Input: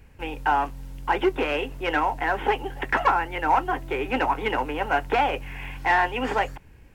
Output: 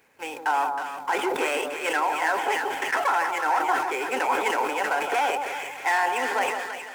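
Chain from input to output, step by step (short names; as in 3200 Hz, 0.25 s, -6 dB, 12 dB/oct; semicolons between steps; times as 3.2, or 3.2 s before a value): median filter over 9 samples; limiter -15.5 dBFS, peak gain reduction 6 dB; HPF 450 Hz 12 dB/oct; high shelf 3700 Hz +8.5 dB; notch 2800 Hz, Q 14; split-band echo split 1300 Hz, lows 0.167 s, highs 0.318 s, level -6 dB; sustainer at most 47 dB/s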